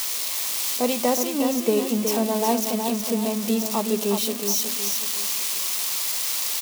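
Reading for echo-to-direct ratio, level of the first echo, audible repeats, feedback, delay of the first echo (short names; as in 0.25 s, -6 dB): -5.5 dB, -6.0 dB, 4, 38%, 0.368 s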